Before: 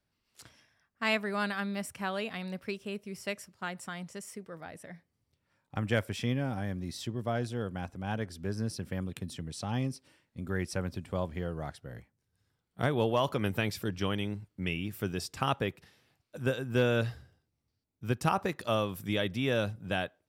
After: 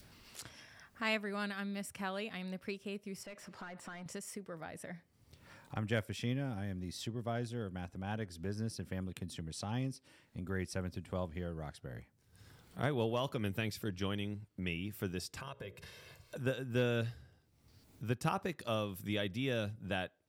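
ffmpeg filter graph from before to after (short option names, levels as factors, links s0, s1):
-filter_complex "[0:a]asettb=1/sr,asplit=3[s0][s1][s2];[s0]atrim=end=3.234[s3];[s1]atrim=start=3.23:end=4.06,asetpts=PTS-STARTPTS,afade=t=in:d=0.004:c=qsin,afade=t=out:st=0.826:d=0.004:c=qsin,acompressor=threshold=0.002:ratio=3:attack=3.2:release=140:knee=1:detection=peak,asplit=2[s4][s5];[s5]highpass=f=720:p=1,volume=8.91,asoftclip=type=tanh:threshold=0.0106[s6];[s4][s6]amix=inputs=2:normalize=0,lowpass=f=1400:p=1,volume=0.501[s7];[s2]atrim=start=4.056[s8];[s3][s7]acrossfade=d=0.004:c1=hsin:c2=qsin[s9];[s9][s8]acrossfade=d=0.004:c1=qsin:c2=hsin,asettb=1/sr,asplit=3[s10][s11][s12];[s10]atrim=end=15.404[s13];[s11]atrim=start=15.4:end=16.36,asetpts=PTS-STARTPTS,afade=t=in:d=0.004:c=qsin,afade=t=out:st=0.956:d=0.004:c=qsin,aecho=1:1:1.9:0.73,atrim=end_sample=42336,acompressor=threshold=0.00501:ratio=3:attack=3.2:release=140:knee=1:detection=peak,bandreject=f=60:t=h:w=6,bandreject=f=120:t=h:w=6,bandreject=f=180:t=h:w=6,bandreject=f=240:t=h:w=6,bandreject=f=300:t=h:w=6,bandreject=f=360:t=h:w=6,bandreject=f=420:t=h:w=6,bandreject=f=480:t=h:w=6,bandreject=f=540:t=h:w=6,bandreject=f=600:t=h:w=6[s14];[s12]atrim=start=16.356[s15];[s13][s14]acrossfade=d=0.004:c1=hsin:c2=qsin[s16];[s16][s15]acrossfade=d=0.004:c1=qsin:c2=hsin,adynamicequalizer=threshold=0.00562:dfrequency=920:dqfactor=0.86:tfrequency=920:tqfactor=0.86:attack=5:release=100:ratio=0.375:range=4:mode=cutabove:tftype=bell,acompressor=mode=upward:threshold=0.0224:ratio=2.5,volume=0.562"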